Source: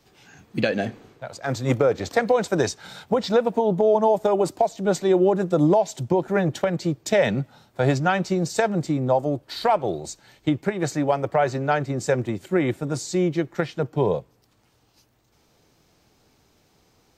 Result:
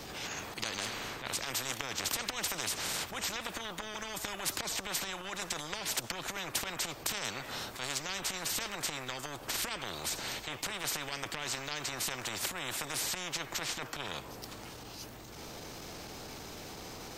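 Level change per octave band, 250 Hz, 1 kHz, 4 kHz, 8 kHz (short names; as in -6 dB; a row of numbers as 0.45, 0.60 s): -22.0, -14.5, +2.0, +2.5 dB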